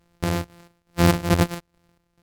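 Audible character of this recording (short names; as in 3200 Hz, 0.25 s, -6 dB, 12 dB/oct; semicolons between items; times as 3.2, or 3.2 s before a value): a buzz of ramps at a fixed pitch in blocks of 256 samples; chopped level 2.3 Hz, depth 60%, duty 55%; SBC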